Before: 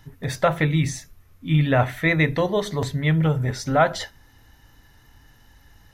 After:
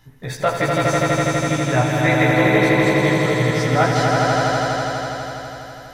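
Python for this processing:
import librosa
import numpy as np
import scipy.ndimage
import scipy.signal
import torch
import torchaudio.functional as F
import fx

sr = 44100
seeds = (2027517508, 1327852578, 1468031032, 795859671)

y = fx.low_shelf(x, sr, hz=110.0, db=-5.0)
y = fx.doubler(y, sr, ms=16.0, db=-2.5)
y = fx.echo_swell(y, sr, ms=82, loudest=5, wet_db=-3.5)
y = y * 10.0 ** (-2.0 / 20.0)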